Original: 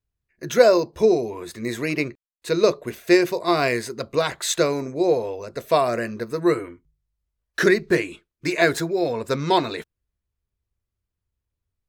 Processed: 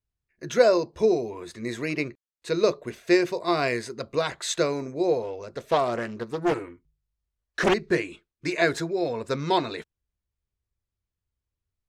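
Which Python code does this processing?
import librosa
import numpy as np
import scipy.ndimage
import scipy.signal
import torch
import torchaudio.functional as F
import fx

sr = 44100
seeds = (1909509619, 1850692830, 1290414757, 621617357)

y = scipy.signal.sosfilt(scipy.signal.butter(2, 8400.0, 'lowpass', fs=sr, output='sos'), x)
y = fx.doppler_dist(y, sr, depth_ms=0.61, at=(5.22, 7.74))
y = F.gain(torch.from_numpy(y), -4.0).numpy()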